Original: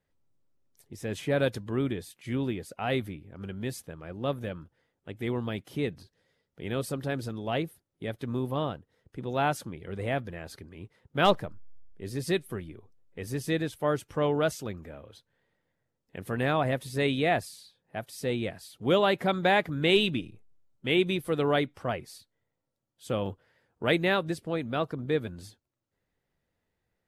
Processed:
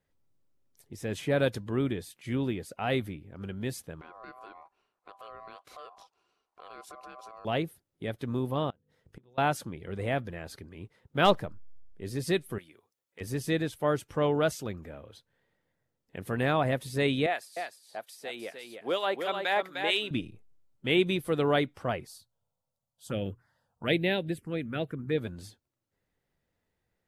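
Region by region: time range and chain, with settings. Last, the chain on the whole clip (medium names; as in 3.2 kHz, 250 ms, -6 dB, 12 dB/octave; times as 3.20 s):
4.01–7.45 s: low-pass 9.8 kHz + compression 4:1, threshold -43 dBFS + ring modulator 890 Hz
8.70–9.38 s: hum notches 50/100/150/200/250/300/350/400/450/500 Hz + inverted gate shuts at -33 dBFS, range -26 dB
12.58–13.21 s: high-pass 1.3 kHz 6 dB/octave + treble shelf 7.9 kHz +5.5 dB + hard clipper -33.5 dBFS
17.26–20.11 s: high-pass 490 Hz + harmonic tremolo 4.3 Hz, crossover 1.4 kHz + delay 304 ms -6 dB
22.07–25.18 s: hum notches 60/120 Hz + touch-sensitive phaser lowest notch 330 Hz, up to 1.2 kHz, full sweep at -24.5 dBFS
whole clip: none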